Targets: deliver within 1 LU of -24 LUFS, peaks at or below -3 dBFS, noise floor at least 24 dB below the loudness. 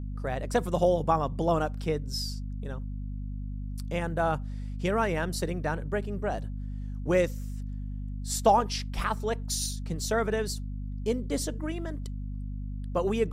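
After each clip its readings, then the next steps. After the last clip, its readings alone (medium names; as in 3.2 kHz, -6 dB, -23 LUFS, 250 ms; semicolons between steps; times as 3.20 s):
hum 50 Hz; highest harmonic 250 Hz; hum level -32 dBFS; loudness -30.5 LUFS; peak level -9.5 dBFS; loudness target -24.0 LUFS
-> de-hum 50 Hz, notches 5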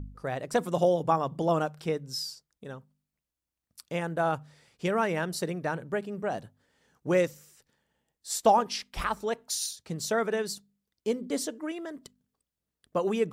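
hum not found; loudness -30.0 LUFS; peak level -10.0 dBFS; loudness target -24.0 LUFS
-> trim +6 dB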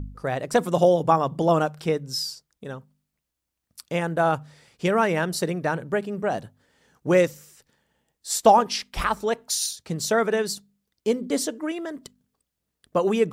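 loudness -24.0 LUFS; peak level -4.0 dBFS; noise floor -82 dBFS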